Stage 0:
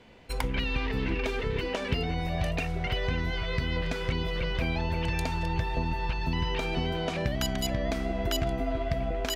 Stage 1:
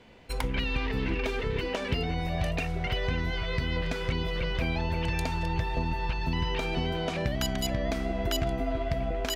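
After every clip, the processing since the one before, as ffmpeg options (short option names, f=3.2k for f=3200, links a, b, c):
-af "asoftclip=type=hard:threshold=-18.5dB"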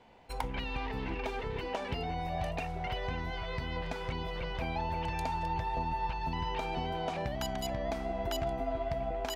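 -af "equalizer=f=830:t=o:w=0.73:g=11.5,volume=-8dB"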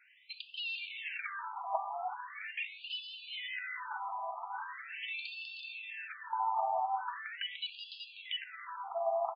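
-filter_complex "[0:a]asplit=8[a][b][c][d][e][f][g][h];[b]adelay=376,afreqshift=-120,volume=-10dB[i];[c]adelay=752,afreqshift=-240,volume=-14.4dB[j];[d]adelay=1128,afreqshift=-360,volume=-18.9dB[k];[e]adelay=1504,afreqshift=-480,volume=-23.3dB[l];[f]adelay=1880,afreqshift=-600,volume=-27.7dB[m];[g]adelay=2256,afreqshift=-720,volume=-32.2dB[n];[h]adelay=2632,afreqshift=-840,volume=-36.6dB[o];[a][i][j][k][l][m][n][o]amix=inputs=8:normalize=0,afftfilt=real='re*between(b*sr/1024,890*pow(3700/890,0.5+0.5*sin(2*PI*0.41*pts/sr))/1.41,890*pow(3700/890,0.5+0.5*sin(2*PI*0.41*pts/sr))*1.41)':imag='im*between(b*sr/1024,890*pow(3700/890,0.5+0.5*sin(2*PI*0.41*pts/sr))/1.41,890*pow(3700/890,0.5+0.5*sin(2*PI*0.41*pts/sr))*1.41)':win_size=1024:overlap=0.75,volume=5.5dB"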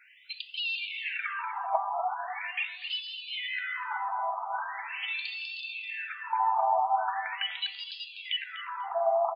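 -filter_complex "[0:a]asplit=2[a][b];[b]adelay=246,lowpass=f=1.4k:p=1,volume=-6.5dB,asplit=2[c][d];[d]adelay=246,lowpass=f=1.4k:p=1,volume=0.22,asplit=2[e][f];[f]adelay=246,lowpass=f=1.4k:p=1,volume=0.22[g];[a][c][e][g]amix=inputs=4:normalize=0,volume=6.5dB"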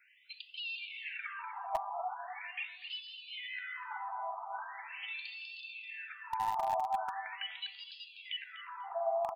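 -filter_complex "[0:a]equalizer=f=4k:t=o:w=1.1:g=-3.5,acrossover=split=1200|1300|2500[a][b][c][d];[b]acrusher=bits=3:dc=4:mix=0:aa=0.000001[e];[a][e][c][d]amix=inputs=4:normalize=0,volume=-6dB"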